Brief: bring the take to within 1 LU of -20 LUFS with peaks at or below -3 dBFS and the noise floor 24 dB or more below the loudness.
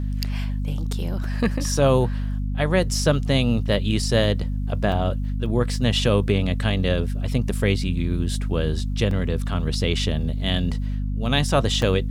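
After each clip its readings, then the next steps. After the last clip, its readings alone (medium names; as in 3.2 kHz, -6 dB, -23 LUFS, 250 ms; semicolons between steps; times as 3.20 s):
dropouts 6; longest dropout 2.6 ms; hum 50 Hz; highest harmonic 250 Hz; hum level -22 dBFS; loudness -23.0 LUFS; peak level -6.0 dBFS; loudness target -20.0 LUFS
-> interpolate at 1.24/4.24/4.92/5.46/9.11/11.82 s, 2.6 ms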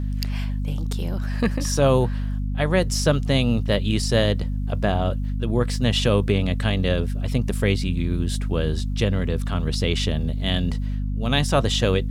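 dropouts 0; hum 50 Hz; highest harmonic 250 Hz; hum level -22 dBFS
-> hum notches 50/100/150/200/250 Hz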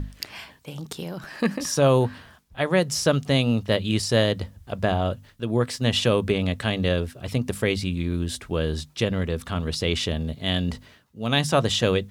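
hum not found; loudness -24.5 LUFS; peak level -6.0 dBFS; loudness target -20.0 LUFS
-> trim +4.5 dB; peak limiter -3 dBFS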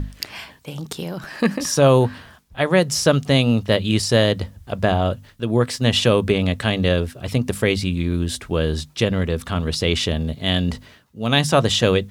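loudness -20.0 LUFS; peak level -3.0 dBFS; noise floor -49 dBFS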